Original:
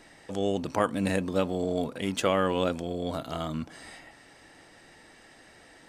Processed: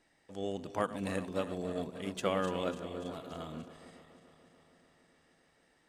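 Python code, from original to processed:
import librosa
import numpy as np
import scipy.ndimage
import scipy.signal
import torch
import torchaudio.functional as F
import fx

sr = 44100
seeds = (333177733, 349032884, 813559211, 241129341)

y = fx.reverse_delay_fb(x, sr, ms=145, feedback_pct=84, wet_db=-11.5)
y = fx.upward_expand(y, sr, threshold_db=-43.0, expansion=1.5)
y = y * librosa.db_to_amplitude(-6.5)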